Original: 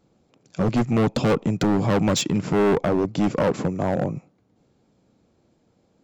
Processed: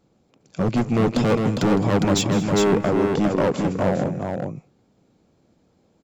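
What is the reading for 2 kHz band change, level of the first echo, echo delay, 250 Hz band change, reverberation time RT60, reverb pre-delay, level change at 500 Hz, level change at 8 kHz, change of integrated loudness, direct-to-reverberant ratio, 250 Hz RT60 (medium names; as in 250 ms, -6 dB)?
+1.5 dB, -15.5 dB, 159 ms, +1.5 dB, no reverb, no reverb, +1.5 dB, no reading, +1.0 dB, no reverb, no reverb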